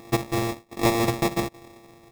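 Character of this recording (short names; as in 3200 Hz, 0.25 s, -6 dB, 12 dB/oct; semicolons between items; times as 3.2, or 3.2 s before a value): a buzz of ramps at a fixed pitch in blocks of 128 samples; tremolo saw down 1.3 Hz, depth 75%; aliases and images of a low sample rate 1500 Hz, jitter 0%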